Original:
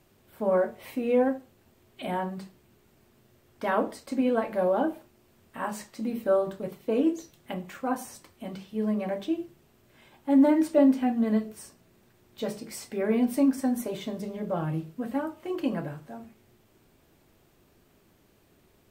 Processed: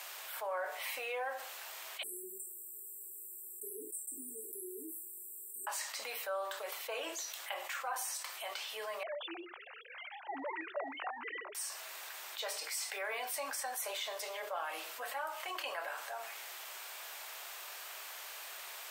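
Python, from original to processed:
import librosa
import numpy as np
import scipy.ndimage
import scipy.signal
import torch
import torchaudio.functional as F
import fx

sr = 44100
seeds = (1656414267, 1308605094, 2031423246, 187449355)

y = fx.brickwall_bandstop(x, sr, low_hz=430.0, high_hz=7400.0, at=(2.03, 5.67))
y = fx.sine_speech(y, sr, at=(9.03, 11.55))
y = scipy.signal.sosfilt(scipy.signal.bessel(6, 1100.0, 'highpass', norm='mag', fs=sr, output='sos'), y)
y = fx.env_flatten(y, sr, amount_pct=70)
y = y * librosa.db_to_amplitude(-5.0)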